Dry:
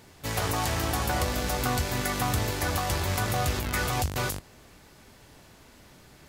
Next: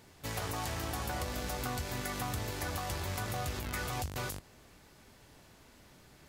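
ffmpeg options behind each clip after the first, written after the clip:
ffmpeg -i in.wav -af "acompressor=threshold=-30dB:ratio=2,volume=-5.5dB" out.wav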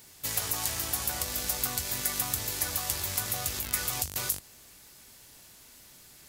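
ffmpeg -i in.wav -af "crystalizer=i=5.5:c=0,volume=-3.5dB" out.wav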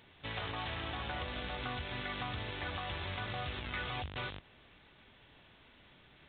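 ffmpeg -i in.wav -af "aresample=8000,aresample=44100,volume=-1dB" out.wav

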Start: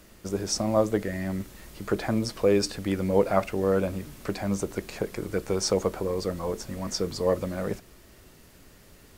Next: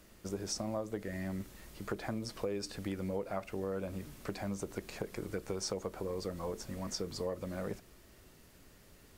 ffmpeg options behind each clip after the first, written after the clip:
ffmpeg -i in.wav -af "acompressor=threshold=-27dB:ratio=6,volume=-6.5dB" out.wav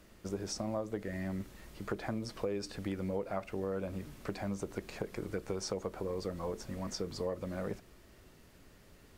ffmpeg -i in.wav -af "highshelf=frequency=5600:gain=-6.5,volume=1dB" out.wav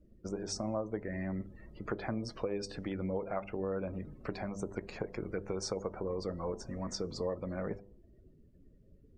ffmpeg -i in.wav -af "afftdn=noise_reduction=29:noise_floor=-54,bandreject=frequency=99.45:width_type=h:width=4,bandreject=frequency=198.9:width_type=h:width=4,bandreject=frequency=298.35:width_type=h:width=4,bandreject=frequency=397.8:width_type=h:width=4,bandreject=frequency=497.25:width_type=h:width=4,bandreject=frequency=596.7:width_type=h:width=4,bandreject=frequency=696.15:width_type=h:width=4,bandreject=frequency=795.6:width_type=h:width=4,bandreject=frequency=895.05:width_type=h:width=4,bandreject=frequency=994.5:width_type=h:width=4,volume=1dB" out.wav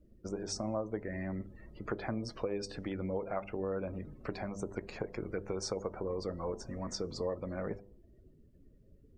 ffmpeg -i in.wav -af "equalizer=frequency=180:width_type=o:width=0.28:gain=-2.5" out.wav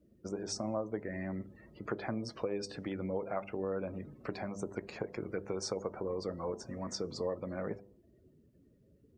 ffmpeg -i in.wav -af "highpass=100" out.wav

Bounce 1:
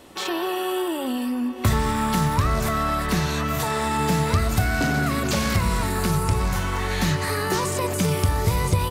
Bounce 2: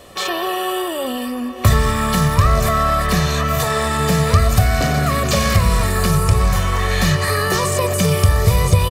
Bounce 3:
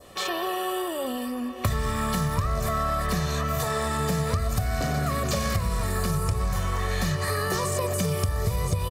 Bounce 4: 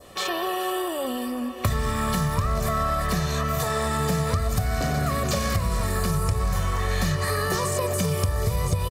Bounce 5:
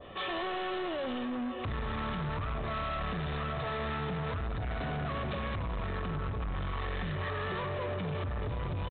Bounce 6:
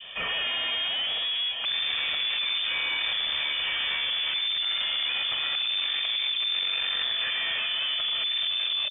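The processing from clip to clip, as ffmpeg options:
ffmpeg -i in.wav -af "aecho=1:1:1.7:0.58,volume=5dB" out.wav
ffmpeg -i in.wav -af "adynamicequalizer=threshold=0.0141:dfrequency=2700:dqfactor=1.2:tfrequency=2700:tqfactor=1.2:attack=5:release=100:ratio=0.375:range=2:mode=cutabove:tftype=bell,acompressor=threshold=-15dB:ratio=6,volume=-6.5dB" out.wav
ffmpeg -i in.wav -af "aecho=1:1:431:0.158,volume=1.5dB" out.wav
ffmpeg -i in.wav -af "alimiter=limit=-18.5dB:level=0:latency=1:release=62,aresample=8000,asoftclip=type=tanh:threshold=-32dB,aresample=44100" out.wav
ffmpeg -i in.wav -af "lowpass=frequency=3100:width_type=q:width=0.5098,lowpass=frequency=3100:width_type=q:width=0.6013,lowpass=frequency=3100:width_type=q:width=0.9,lowpass=frequency=3100:width_type=q:width=2.563,afreqshift=-3600,volume=6dB" out.wav

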